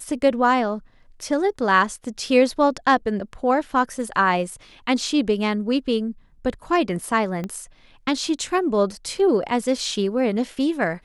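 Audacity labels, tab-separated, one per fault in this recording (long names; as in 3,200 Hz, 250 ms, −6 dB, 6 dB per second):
7.440000	7.440000	click −17 dBFS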